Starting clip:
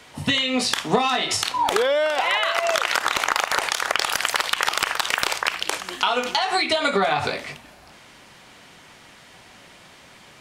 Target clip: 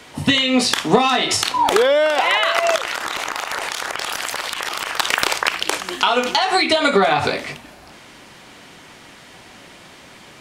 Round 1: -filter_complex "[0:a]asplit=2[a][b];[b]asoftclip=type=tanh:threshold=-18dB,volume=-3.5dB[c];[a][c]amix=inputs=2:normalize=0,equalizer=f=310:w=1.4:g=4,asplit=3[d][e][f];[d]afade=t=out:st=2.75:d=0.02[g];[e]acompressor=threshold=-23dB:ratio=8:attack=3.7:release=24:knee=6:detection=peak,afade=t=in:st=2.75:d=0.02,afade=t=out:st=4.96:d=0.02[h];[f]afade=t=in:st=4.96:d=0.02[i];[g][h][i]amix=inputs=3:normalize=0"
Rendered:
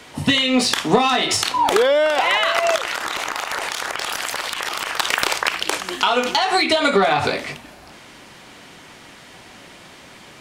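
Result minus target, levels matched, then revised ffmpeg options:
soft clip: distortion +10 dB
-filter_complex "[0:a]asplit=2[a][b];[b]asoftclip=type=tanh:threshold=-8.5dB,volume=-3.5dB[c];[a][c]amix=inputs=2:normalize=0,equalizer=f=310:w=1.4:g=4,asplit=3[d][e][f];[d]afade=t=out:st=2.75:d=0.02[g];[e]acompressor=threshold=-23dB:ratio=8:attack=3.7:release=24:knee=6:detection=peak,afade=t=in:st=2.75:d=0.02,afade=t=out:st=4.96:d=0.02[h];[f]afade=t=in:st=4.96:d=0.02[i];[g][h][i]amix=inputs=3:normalize=0"

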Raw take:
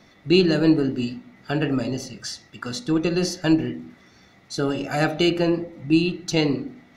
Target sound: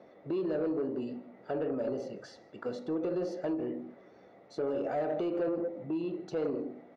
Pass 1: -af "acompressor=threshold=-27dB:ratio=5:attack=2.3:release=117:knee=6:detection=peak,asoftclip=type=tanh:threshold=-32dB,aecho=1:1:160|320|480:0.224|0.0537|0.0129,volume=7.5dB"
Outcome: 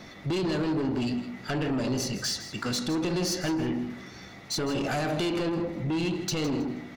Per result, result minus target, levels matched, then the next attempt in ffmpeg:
echo-to-direct +12 dB; 500 Hz band -5.0 dB
-af "acompressor=threshold=-27dB:ratio=5:attack=2.3:release=117:knee=6:detection=peak,asoftclip=type=tanh:threshold=-32dB,aecho=1:1:160|320:0.0562|0.0135,volume=7.5dB"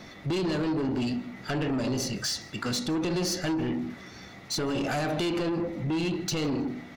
500 Hz band -5.0 dB
-af "acompressor=threshold=-27dB:ratio=5:attack=2.3:release=117:knee=6:detection=peak,bandpass=f=520:t=q:w=2.6:csg=0,asoftclip=type=tanh:threshold=-32dB,aecho=1:1:160|320:0.0562|0.0135,volume=7.5dB"

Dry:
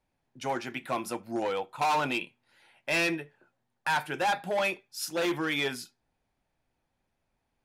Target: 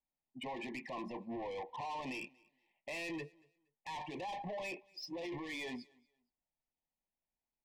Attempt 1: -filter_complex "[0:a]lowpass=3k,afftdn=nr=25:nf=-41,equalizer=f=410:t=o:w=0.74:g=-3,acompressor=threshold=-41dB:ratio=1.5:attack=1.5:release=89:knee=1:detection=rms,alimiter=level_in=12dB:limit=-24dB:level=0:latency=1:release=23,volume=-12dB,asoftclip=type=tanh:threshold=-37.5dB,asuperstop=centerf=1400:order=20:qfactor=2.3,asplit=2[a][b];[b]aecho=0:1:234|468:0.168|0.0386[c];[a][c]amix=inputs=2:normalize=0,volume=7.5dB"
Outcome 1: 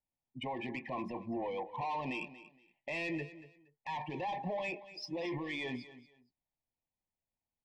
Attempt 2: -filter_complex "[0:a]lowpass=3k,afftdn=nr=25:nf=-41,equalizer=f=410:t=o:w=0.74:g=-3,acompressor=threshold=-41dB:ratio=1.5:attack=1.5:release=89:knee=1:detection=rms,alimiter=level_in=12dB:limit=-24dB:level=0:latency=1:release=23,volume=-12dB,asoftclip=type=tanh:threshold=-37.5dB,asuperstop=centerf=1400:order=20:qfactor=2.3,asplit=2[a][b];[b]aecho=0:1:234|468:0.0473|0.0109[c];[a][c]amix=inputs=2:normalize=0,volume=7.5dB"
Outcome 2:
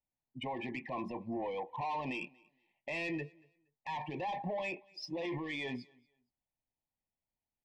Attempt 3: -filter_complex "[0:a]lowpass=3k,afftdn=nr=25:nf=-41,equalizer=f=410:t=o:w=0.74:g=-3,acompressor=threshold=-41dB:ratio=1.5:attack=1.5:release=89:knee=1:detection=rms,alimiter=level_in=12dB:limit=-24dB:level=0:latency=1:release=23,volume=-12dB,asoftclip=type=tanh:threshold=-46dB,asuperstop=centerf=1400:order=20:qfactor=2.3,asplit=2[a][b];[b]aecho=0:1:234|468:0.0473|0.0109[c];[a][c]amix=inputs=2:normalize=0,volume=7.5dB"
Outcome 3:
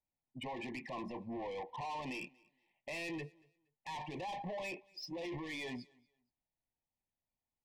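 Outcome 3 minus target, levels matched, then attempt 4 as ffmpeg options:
125 Hz band +3.5 dB
-filter_complex "[0:a]lowpass=3k,equalizer=f=100:t=o:w=0.85:g=-11,afftdn=nr=25:nf=-41,equalizer=f=410:t=o:w=0.74:g=-3,acompressor=threshold=-41dB:ratio=1.5:attack=1.5:release=89:knee=1:detection=rms,alimiter=level_in=12dB:limit=-24dB:level=0:latency=1:release=23,volume=-12dB,asoftclip=type=tanh:threshold=-46dB,asuperstop=centerf=1400:order=20:qfactor=2.3,asplit=2[a][b];[b]aecho=0:1:234|468:0.0473|0.0109[c];[a][c]amix=inputs=2:normalize=0,volume=7.5dB"

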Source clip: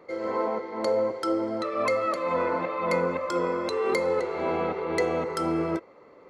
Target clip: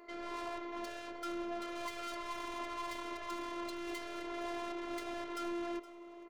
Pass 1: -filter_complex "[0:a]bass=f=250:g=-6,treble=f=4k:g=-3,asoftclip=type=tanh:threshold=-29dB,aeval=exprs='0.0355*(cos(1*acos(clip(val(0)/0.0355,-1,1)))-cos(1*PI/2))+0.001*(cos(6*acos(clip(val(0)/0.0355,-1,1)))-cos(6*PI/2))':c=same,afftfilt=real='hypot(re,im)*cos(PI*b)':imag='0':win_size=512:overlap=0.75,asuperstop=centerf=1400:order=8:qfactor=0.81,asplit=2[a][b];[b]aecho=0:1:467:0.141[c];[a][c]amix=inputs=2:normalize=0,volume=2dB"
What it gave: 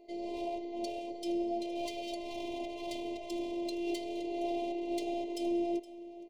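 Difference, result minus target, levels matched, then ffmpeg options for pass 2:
1000 Hz band -4.5 dB; soft clip: distortion -5 dB
-filter_complex "[0:a]bass=f=250:g=-6,treble=f=4k:g=-3,asoftclip=type=tanh:threshold=-38.5dB,aeval=exprs='0.0355*(cos(1*acos(clip(val(0)/0.0355,-1,1)))-cos(1*PI/2))+0.001*(cos(6*acos(clip(val(0)/0.0355,-1,1)))-cos(6*PI/2))':c=same,afftfilt=real='hypot(re,im)*cos(PI*b)':imag='0':win_size=512:overlap=0.75,asplit=2[a][b];[b]aecho=0:1:467:0.141[c];[a][c]amix=inputs=2:normalize=0,volume=2dB"

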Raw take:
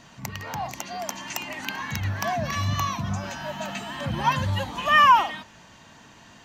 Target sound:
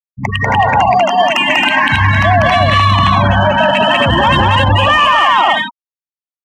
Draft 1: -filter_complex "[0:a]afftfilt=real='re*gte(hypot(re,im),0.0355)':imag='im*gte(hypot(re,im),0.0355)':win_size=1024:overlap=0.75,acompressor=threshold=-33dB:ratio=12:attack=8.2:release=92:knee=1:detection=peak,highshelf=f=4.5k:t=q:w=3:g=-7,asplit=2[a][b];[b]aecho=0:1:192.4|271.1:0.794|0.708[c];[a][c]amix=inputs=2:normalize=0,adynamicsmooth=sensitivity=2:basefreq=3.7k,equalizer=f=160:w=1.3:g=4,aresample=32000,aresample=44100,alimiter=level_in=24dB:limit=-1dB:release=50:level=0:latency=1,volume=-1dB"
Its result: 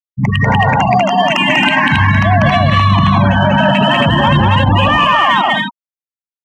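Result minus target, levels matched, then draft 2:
compressor: peak gain reduction +7 dB; 125 Hz band +3.0 dB
-filter_complex "[0:a]afftfilt=real='re*gte(hypot(re,im),0.0355)':imag='im*gte(hypot(re,im),0.0355)':win_size=1024:overlap=0.75,acompressor=threshold=-25.5dB:ratio=12:attack=8.2:release=92:knee=1:detection=peak,highshelf=f=4.5k:t=q:w=3:g=-7,asplit=2[a][b];[b]aecho=0:1:192.4|271.1:0.794|0.708[c];[a][c]amix=inputs=2:normalize=0,adynamicsmooth=sensitivity=2:basefreq=3.7k,equalizer=f=160:w=1.3:g=-8,aresample=32000,aresample=44100,alimiter=level_in=24dB:limit=-1dB:release=50:level=0:latency=1,volume=-1dB"

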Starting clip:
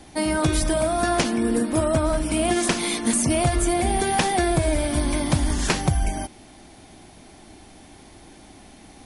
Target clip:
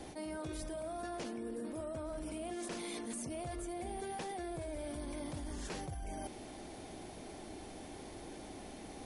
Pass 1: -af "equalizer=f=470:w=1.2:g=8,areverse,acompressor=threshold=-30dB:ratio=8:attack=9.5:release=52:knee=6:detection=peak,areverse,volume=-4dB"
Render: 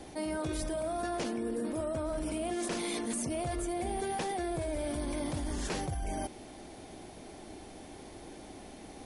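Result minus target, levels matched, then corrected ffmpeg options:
compressor: peak gain reduction -7.5 dB
-af "equalizer=f=470:w=1.2:g=8,areverse,acompressor=threshold=-38.5dB:ratio=8:attack=9.5:release=52:knee=6:detection=peak,areverse,volume=-4dB"

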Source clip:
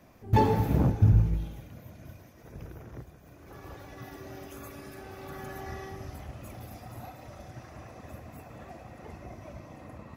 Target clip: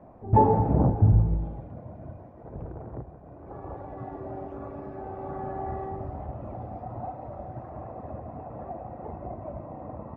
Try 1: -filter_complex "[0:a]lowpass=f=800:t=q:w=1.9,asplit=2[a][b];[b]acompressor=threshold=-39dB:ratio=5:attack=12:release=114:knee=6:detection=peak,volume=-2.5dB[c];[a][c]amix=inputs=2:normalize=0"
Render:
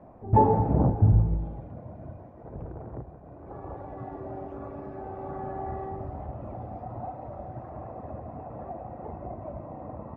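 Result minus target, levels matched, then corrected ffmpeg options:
compressor: peak gain reduction +5 dB
-filter_complex "[0:a]lowpass=f=800:t=q:w=1.9,asplit=2[a][b];[b]acompressor=threshold=-32.5dB:ratio=5:attack=12:release=114:knee=6:detection=peak,volume=-2.5dB[c];[a][c]amix=inputs=2:normalize=0"

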